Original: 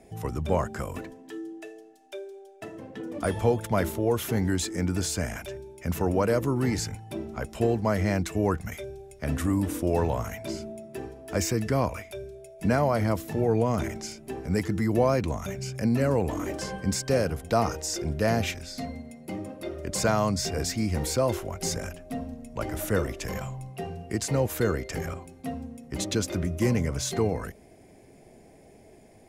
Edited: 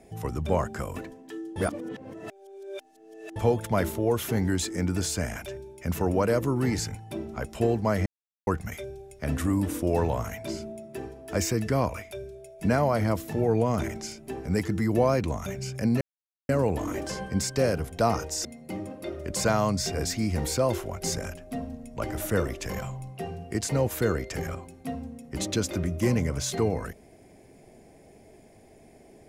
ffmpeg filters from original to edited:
ffmpeg -i in.wav -filter_complex "[0:a]asplit=7[link_01][link_02][link_03][link_04][link_05][link_06][link_07];[link_01]atrim=end=1.562[link_08];[link_02]atrim=start=1.558:end=3.362,asetpts=PTS-STARTPTS,areverse[link_09];[link_03]atrim=start=3.358:end=8.06,asetpts=PTS-STARTPTS,afade=type=out:start_time=4.698:duration=0.004:curve=hsin[link_10];[link_04]atrim=start=8.06:end=8.47,asetpts=PTS-STARTPTS,volume=0[link_11];[link_05]atrim=start=8.47:end=16.01,asetpts=PTS-STARTPTS,afade=type=in:duration=0.004:curve=hsin,afade=type=out:start_time=7.536:duration=0.004:curve=hsin,apad=pad_dur=0.48[link_12];[link_06]atrim=start=16.01:end=17.972,asetpts=PTS-STARTPTS,afade=type=in:duration=0.004:curve=hsin[link_13];[link_07]atrim=start=19.038[link_14];[link_08][link_09]acrossfade=duration=0.004:curve1=hsin:curve2=hsin[link_15];[link_10][link_11][link_12][link_13]concat=n=4:v=0:a=1[link_16];[link_15][link_16]acrossfade=duration=0.004:curve1=hsin:curve2=hsin[link_17];[link_17][link_14]acrossfade=duration=0.004:curve1=hsin:curve2=hsin" out.wav

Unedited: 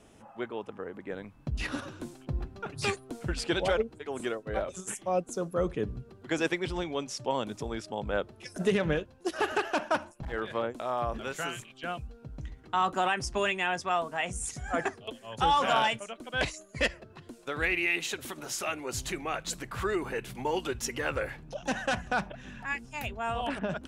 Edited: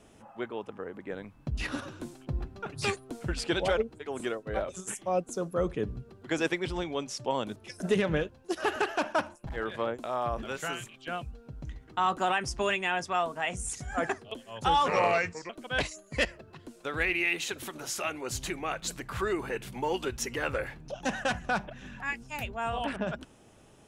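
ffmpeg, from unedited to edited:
ffmpeg -i in.wav -filter_complex "[0:a]asplit=4[link_01][link_02][link_03][link_04];[link_01]atrim=end=7.562[link_05];[link_02]atrim=start=8.318:end=15.644[link_06];[link_03]atrim=start=15.64:end=16.12,asetpts=PTS-STARTPTS,asetrate=34398,aresample=44100,atrim=end_sample=27138,asetpts=PTS-STARTPTS[link_07];[link_04]atrim=start=16.116[link_08];[link_05][link_06]acrossfade=duration=0.004:curve1=hsin:curve2=hsin[link_09];[link_09][link_07]acrossfade=duration=0.004:curve1=hsin:curve2=hsin[link_10];[link_10][link_08]acrossfade=duration=0.004:curve1=hsin:curve2=hsin" out.wav

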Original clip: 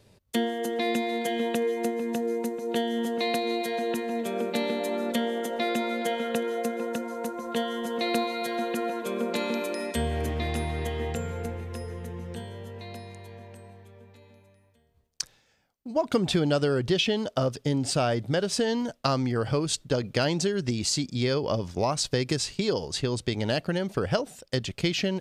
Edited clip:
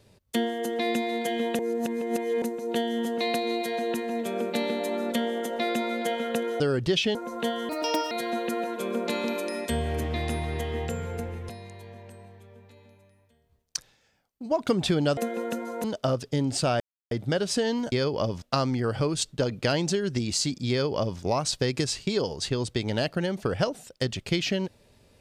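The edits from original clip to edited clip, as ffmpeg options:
ffmpeg -i in.wav -filter_complex "[0:a]asplit=13[link_01][link_02][link_03][link_04][link_05][link_06][link_07][link_08][link_09][link_10][link_11][link_12][link_13];[link_01]atrim=end=1.592[link_14];[link_02]atrim=start=1.588:end=2.422,asetpts=PTS-STARTPTS,areverse[link_15];[link_03]atrim=start=2.418:end=6.602[link_16];[link_04]atrim=start=16.618:end=17.172[link_17];[link_05]atrim=start=7.268:end=7.814[link_18];[link_06]atrim=start=7.81:end=8.37,asetpts=PTS-STARTPTS,asetrate=58653,aresample=44100,atrim=end_sample=18568,asetpts=PTS-STARTPTS[link_19];[link_07]atrim=start=8.366:end=11.752[link_20];[link_08]atrim=start=12.938:end=16.622[link_21];[link_09]atrim=start=6.598:end=7.272[link_22];[link_10]atrim=start=17.168:end=18.13,asetpts=PTS-STARTPTS,afade=type=out:start_time=0.958:duration=0.004:curve=hsin,apad=pad_dur=0.31[link_23];[link_11]atrim=start=18.13:end=18.942,asetpts=PTS-STARTPTS,afade=type=in:duration=0.004:curve=hsin[link_24];[link_12]atrim=start=21.218:end=21.722[link_25];[link_13]atrim=start=18.938[link_26];[link_14][link_15]acrossfade=duration=0.004:curve1=hsin:curve2=hsin[link_27];[link_27][link_16]acrossfade=duration=0.004:curve1=hsin:curve2=hsin[link_28];[link_28][link_17]acrossfade=duration=0.004:curve1=hsin:curve2=hsin[link_29];[link_29][link_18]acrossfade=duration=0.004:curve1=hsin:curve2=hsin[link_30];[link_30][link_19]acrossfade=duration=0.004:curve1=hsin:curve2=hsin[link_31];[link_31][link_20]acrossfade=duration=0.004:curve1=hsin:curve2=hsin[link_32];[link_32][link_21]acrossfade=duration=0.004:curve1=hsin:curve2=hsin[link_33];[link_33][link_22]acrossfade=duration=0.004:curve1=hsin:curve2=hsin[link_34];[link_23][link_24]concat=n=2:v=0:a=1[link_35];[link_34][link_35]acrossfade=duration=0.004:curve1=hsin:curve2=hsin[link_36];[link_36][link_25]acrossfade=duration=0.004:curve1=hsin:curve2=hsin[link_37];[link_37][link_26]acrossfade=duration=0.004:curve1=hsin:curve2=hsin" out.wav

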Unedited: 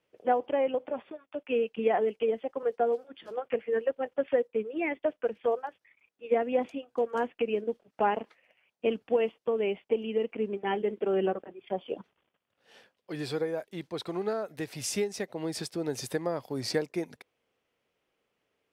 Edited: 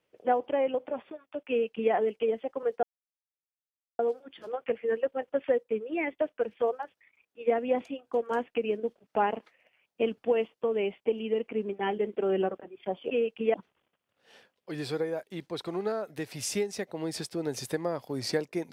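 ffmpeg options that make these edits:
ffmpeg -i in.wav -filter_complex "[0:a]asplit=4[link_01][link_02][link_03][link_04];[link_01]atrim=end=2.83,asetpts=PTS-STARTPTS,afade=type=out:start_time=2.826:duration=0.004:curve=hsin,apad=pad_dur=1.16[link_05];[link_02]atrim=start=2.83:end=11.952,asetpts=PTS-STARTPTS,afade=type=in:duration=0.004:curve=hsin[link_06];[link_03]atrim=start=1.488:end=1.922[link_07];[link_04]atrim=start=11.948[link_08];[link_05][link_06]concat=n=2:v=0:a=1[link_09];[link_09][link_07]acrossfade=duration=0.004:curve1=hsin:curve2=hsin[link_10];[link_10][link_08]acrossfade=duration=0.004:curve1=hsin:curve2=hsin" out.wav

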